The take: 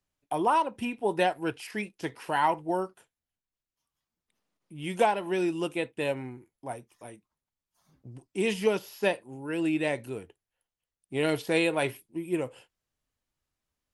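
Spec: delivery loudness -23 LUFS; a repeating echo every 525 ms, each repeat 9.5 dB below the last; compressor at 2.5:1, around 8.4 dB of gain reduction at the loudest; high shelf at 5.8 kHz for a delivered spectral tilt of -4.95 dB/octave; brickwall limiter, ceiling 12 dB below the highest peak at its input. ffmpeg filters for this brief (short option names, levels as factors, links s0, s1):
-af "highshelf=f=5800:g=-9,acompressor=threshold=0.0282:ratio=2.5,alimiter=level_in=2.24:limit=0.0631:level=0:latency=1,volume=0.447,aecho=1:1:525|1050|1575|2100:0.335|0.111|0.0365|0.012,volume=8.41"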